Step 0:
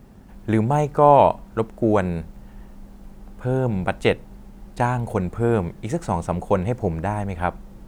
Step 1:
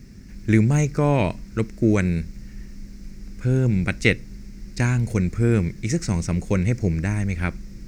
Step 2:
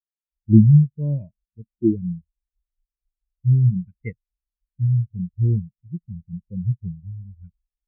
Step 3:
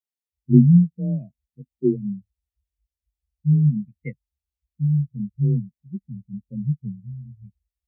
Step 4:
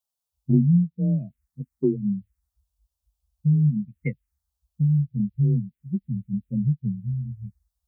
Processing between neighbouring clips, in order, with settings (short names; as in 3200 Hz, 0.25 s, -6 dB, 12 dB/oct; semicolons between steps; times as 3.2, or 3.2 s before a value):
EQ curve 130 Hz 0 dB, 330 Hz -3 dB, 840 Hz -21 dB, 2200 Hz +5 dB, 3200 Hz -7 dB, 5300 Hz +11 dB, 10000 Hz -4 dB; gain +4.5 dB
spectral expander 4:1
elliptic band-stop 830–1800 Hz; frequency shift +26 Hz; gain -1 dB
compressor 2.5:1, threshold -30 dBFS, peak gain reduction 15 dB; envelope phaser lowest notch 330 Hz, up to 1300 Hz, full sweep at -31.5 dBFS; gain +8 dB